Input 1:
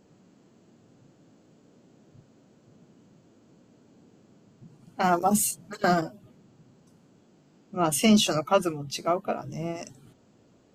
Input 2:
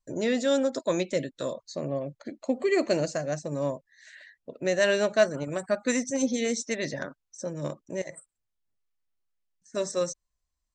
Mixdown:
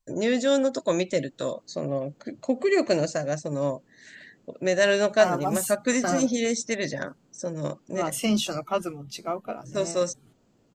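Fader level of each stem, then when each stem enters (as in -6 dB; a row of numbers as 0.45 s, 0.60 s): -4.5 dB, +2.5 dB; 0.20 s, 0.00 s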